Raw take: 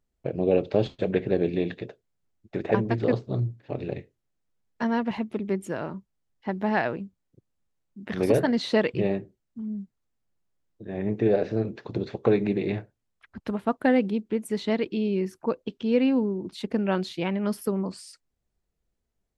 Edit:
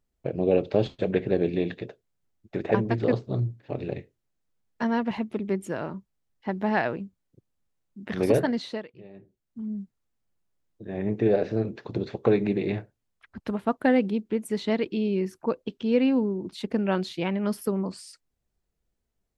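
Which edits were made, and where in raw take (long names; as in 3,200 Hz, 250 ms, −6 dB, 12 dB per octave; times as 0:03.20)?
0:08.37–0:09.63: duck −22 dB, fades 0.50 s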